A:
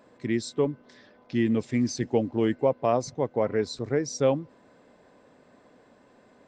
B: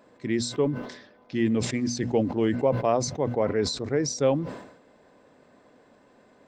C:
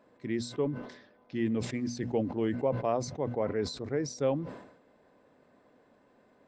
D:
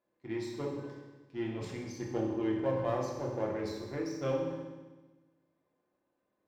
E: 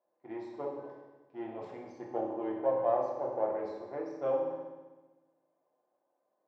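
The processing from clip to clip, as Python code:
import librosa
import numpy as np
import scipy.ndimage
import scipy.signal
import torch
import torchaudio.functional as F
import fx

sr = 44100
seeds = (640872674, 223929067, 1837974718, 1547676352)

y1 = fx.hum_notches(x, sr, base_hz=60, count=4)
y1 = fx.sustainer(y1, sr, db_per_s=74.0)
y2 = fx.high_shelf(y1, sr, hz=5000.0, db=-8.5)
y2 = F.gain(torch.from_numpy(y2), -6.0).numpy()
y3 = fx.power_curve(y2, sr, exponent=1.4)
y3 = fx.rev_fdn(y3, sr, rt60_s=1.2, lf_ratio=1.25, hf_ratio=1.0, size_ms=17.0, drr_db=-3.0)
y3 = F.gain(torch.from_numpy(y3), -5.5).numpy()
y4 = fx.bandpass_q(y3, sr, hz=710.0, q=2.6)
y4 = F.gain(torch.from_numpy(y4), 8.0).numpy()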